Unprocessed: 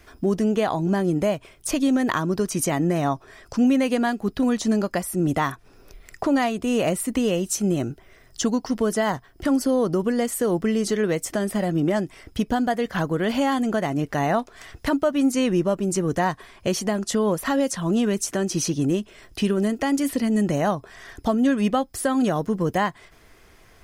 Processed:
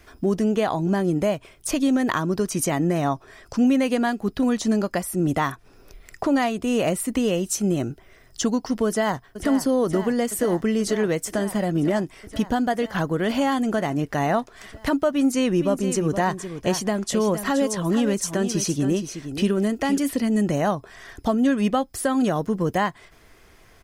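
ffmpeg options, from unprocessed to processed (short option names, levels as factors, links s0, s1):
-filter_complex "[0:a]asplit=2[s0][s1];[s1]afade=t=in:st=8.87:d=0.01,afade=t=out:st=9.49:d=0.01,aecho=0:1:480|960|1440|1920|2400|2880|3360|3840|4320|4800|5280|5760:0.298538|0.253758|0.215694|0.18334|0.155839|0.132463|0.112594|0.0957045|0.0813488|0.0691465|0.0587745|0.0499584[s2];[s0][s2]amix=inputs=2:normalize=0,asettb=1/sr,asplit=3[s3][s4][s5];[s3]atrim=end=15.134[s6];[s4]atrim=start=15.13:end=19.98,asetpts=PTS-STARTPTS,afade=t=in:d=0.004:c=qsin,afade=t=out:st=4.846:d=0.004:c=qsin,aecho=1:1:469:0.316,atrim=end_sample=213885[s7];[s5]atrim=start=19.976[s8];[s6][s7]acrossfade=d=0.004:c1=hsin:c2=qsin[s9];[s9][s8]acrossfade=d=0.004:c1=qsin:c2=hsin"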